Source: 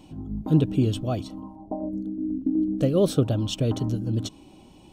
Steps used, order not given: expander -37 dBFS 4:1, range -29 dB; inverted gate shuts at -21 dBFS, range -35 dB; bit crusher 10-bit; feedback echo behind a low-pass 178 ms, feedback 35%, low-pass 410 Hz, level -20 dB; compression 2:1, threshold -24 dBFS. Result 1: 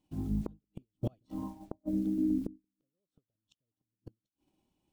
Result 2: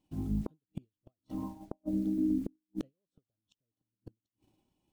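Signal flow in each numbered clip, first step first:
bit crusher > compression > inverted gate > feedback echo behind a low-pass > expander; feedback echo behind a low-pass > bit crusher > compression > inverted gate > expander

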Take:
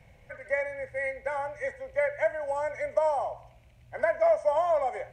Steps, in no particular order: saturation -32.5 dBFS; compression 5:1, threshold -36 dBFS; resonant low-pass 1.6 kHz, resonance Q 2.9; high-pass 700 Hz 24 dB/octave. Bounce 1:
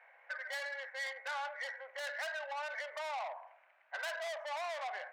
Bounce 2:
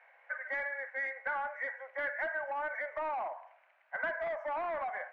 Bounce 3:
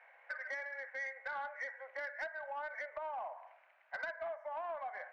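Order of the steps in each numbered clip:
resonant low-pass > saturation > compression > high-pass; high-pass > saturation > compression > resonant low-pass; resonant low-pass > compression > high-pass > saturation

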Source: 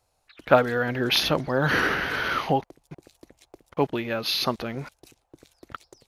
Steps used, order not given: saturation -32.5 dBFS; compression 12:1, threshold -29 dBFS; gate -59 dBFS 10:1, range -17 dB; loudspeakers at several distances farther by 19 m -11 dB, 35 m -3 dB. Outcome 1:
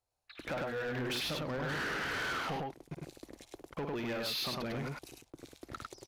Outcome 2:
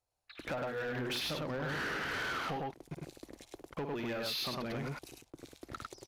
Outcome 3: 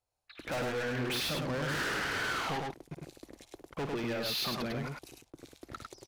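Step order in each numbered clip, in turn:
compression > gate > loudspeakers at several distances > saturation; gate > loudspeakers at several distances > compression > saturation; saturation > gate > loudspeakers at several distances > compression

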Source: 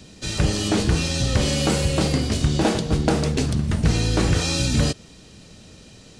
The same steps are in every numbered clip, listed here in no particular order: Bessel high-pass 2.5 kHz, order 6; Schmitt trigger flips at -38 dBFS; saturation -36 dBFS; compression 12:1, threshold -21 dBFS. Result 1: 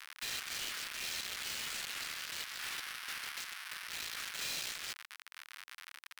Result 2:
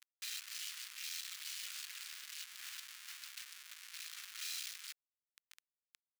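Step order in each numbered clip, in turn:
Schmitt trigger > compression > Bessel high-pass > saturation; compression > saturation > Schmitt trigger > Bessel high-pass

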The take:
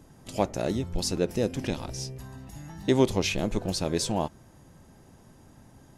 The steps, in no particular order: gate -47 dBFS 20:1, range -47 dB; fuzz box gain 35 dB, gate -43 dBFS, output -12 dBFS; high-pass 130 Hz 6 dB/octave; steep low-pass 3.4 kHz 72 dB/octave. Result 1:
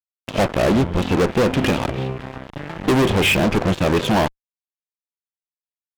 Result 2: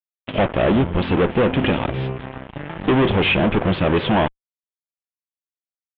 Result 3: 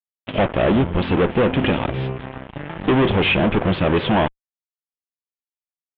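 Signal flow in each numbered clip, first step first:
steep low-pass > gate > high-pass > fuzz box; gate > high-pass > fuzz box > steep low-pass; high-pass > fuzz box > gate > steep low-pass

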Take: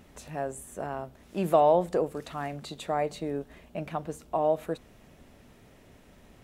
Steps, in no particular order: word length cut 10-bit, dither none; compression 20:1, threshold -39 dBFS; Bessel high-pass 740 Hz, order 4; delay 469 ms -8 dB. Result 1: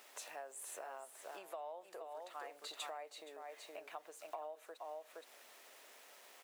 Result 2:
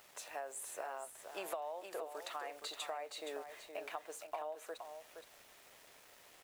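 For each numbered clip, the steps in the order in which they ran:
word length cut > delay > compression > Bessel high-pass; Bessel high-pass > word length cut > compression > delay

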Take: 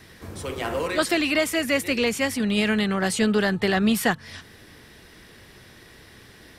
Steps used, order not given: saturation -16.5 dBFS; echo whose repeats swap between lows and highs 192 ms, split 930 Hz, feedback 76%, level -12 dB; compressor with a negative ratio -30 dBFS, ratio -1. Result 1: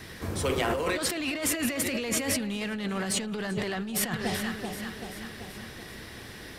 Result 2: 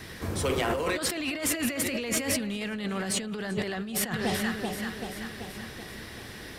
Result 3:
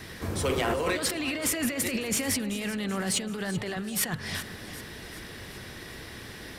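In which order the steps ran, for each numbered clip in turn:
saturation > echo whose repeats swap between lows and highs > compressor with a negative ratio; echo whose repeats swap between lows and highs > compressor with a negative ratio > saturation; compressor with a negative ratio > saturation > echo whose repeats swap between lows and highs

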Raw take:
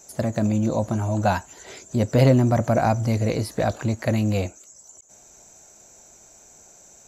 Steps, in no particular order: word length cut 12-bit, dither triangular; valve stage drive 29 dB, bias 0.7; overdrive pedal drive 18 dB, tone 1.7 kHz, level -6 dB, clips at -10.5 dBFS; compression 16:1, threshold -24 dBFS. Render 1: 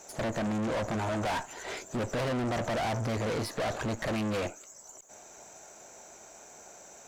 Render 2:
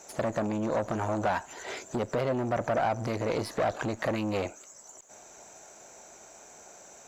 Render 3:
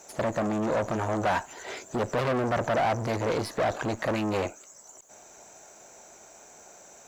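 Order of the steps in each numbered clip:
overdrive pedal > word length cut > valve stage > compression; compression > word length cut > valve stage > overdrive pedal; valve stage > compression > overdrive pedal > word length cut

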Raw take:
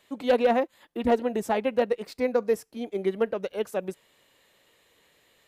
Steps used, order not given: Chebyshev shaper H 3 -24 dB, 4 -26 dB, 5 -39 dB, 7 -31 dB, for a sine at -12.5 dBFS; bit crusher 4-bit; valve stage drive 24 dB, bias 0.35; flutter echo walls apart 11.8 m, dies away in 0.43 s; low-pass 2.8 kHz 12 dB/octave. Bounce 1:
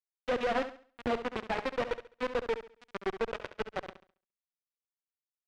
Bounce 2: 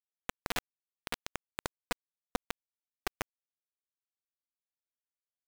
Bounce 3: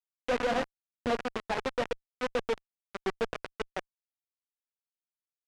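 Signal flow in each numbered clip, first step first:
bit crusher > valve stage > flutter echo > Chebyshev shaper > low-pass; low-pass > valve stage > flutter echo > Chebyshev shaper > bit crusher; flutter echo > Chebyshev shaper > bit crusher > low-pass > valve stage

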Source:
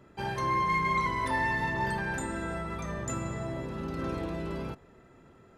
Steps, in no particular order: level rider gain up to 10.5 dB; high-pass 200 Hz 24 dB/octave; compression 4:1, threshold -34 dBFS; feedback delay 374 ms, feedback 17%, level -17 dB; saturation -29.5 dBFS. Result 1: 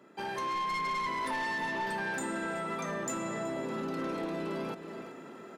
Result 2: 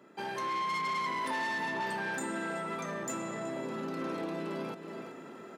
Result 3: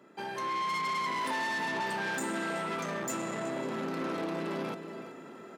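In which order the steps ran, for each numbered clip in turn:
high-pass > saturation > feedback delay > level rider > compression; feedback delay > saturation > level rider > compression > high-pass; feedback delay > compression > level rider > saturation > high-pass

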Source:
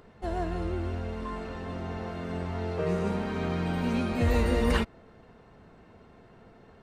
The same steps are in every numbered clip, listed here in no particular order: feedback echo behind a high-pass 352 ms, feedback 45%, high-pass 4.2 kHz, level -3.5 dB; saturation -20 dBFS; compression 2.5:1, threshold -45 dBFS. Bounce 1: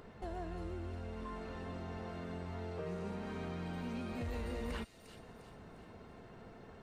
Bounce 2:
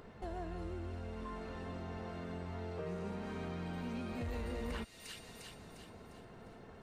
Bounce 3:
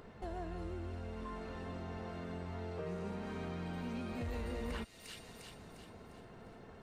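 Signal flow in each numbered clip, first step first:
saturation > compression > feedback echo behind a high-pass; feedback echo behind a high-pass > saturation > compression; saturation > feedback echo behind a high-pass > compression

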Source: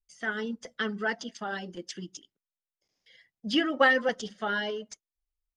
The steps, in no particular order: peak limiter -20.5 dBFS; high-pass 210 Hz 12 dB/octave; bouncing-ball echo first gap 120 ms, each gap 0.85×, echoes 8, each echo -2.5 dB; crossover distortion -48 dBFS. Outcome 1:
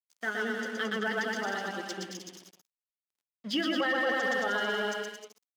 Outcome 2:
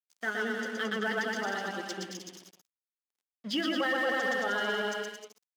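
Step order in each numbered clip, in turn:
bouncing-ball echo > crossover distortion > high-pass > peak limiter; bouncing-ball echo > peak limiter > crossover distortion > high-pass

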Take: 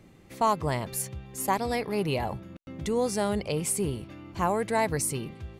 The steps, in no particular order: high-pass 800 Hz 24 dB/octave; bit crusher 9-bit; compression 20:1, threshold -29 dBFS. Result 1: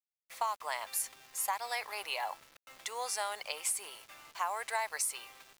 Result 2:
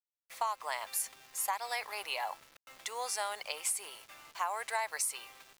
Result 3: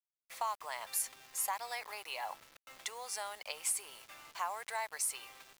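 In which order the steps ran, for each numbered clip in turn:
high-pass > compression > bit crusher; high-pass > bit crusher > compression; compression > high-pass > bit crusher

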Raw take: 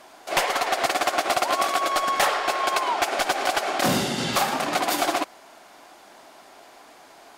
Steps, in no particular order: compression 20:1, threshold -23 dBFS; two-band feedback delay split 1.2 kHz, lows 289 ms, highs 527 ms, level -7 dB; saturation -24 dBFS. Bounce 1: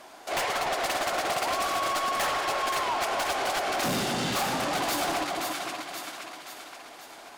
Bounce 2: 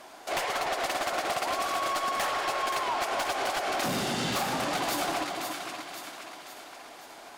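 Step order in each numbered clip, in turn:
two-band feedback delay > saturation > compression; compression > two-band feedback delay > saturation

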